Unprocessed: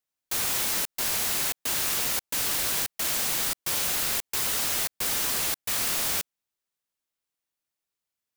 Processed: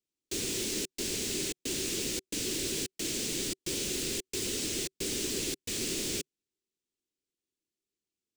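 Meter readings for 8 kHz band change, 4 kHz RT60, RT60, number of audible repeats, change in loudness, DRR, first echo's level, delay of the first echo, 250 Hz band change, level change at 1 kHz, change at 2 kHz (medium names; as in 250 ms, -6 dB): -5.0 dB, no reverb, no reverb, no echo, -7.5 dB, no reverb, no echo, no echo, +6.5 dB, -17.5 dB, -8.5 dB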